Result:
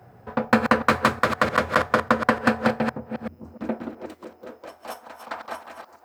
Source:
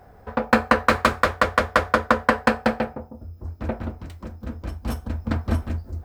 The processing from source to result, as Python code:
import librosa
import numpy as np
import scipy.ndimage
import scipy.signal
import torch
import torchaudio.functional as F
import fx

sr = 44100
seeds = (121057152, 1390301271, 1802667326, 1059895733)

y = fx.reverse_delay(x, sr, ms=298, wet_db=-8.0)
y = fx.dmg_buzz(y, sr, base_hz=120.0, harmonics=25, level_db=-57.0, tilt_db=-7, odd_only=False)
y = fx.filter_sweep_highpass(y, sr, from_hz=130.0, to_hz=810.0, start_s=2.96, end_s=5.15, q=1.8)
y = F.gain(torch.from_numpy(y), -2.0).numpy()